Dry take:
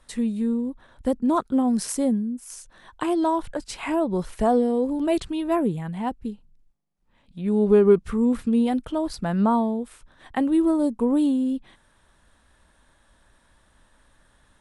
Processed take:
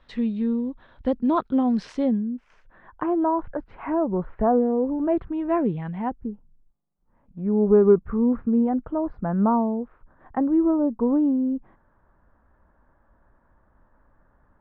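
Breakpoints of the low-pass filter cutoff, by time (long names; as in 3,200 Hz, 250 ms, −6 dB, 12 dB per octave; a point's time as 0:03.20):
low-pass filter 24 dB per octave
0:01.92 3,900 Hz
0:03.06 1,600 Hz
0:05.26 1,600 Hz
0:05.83 3,200 Hz
0:06.26 1,400 Hz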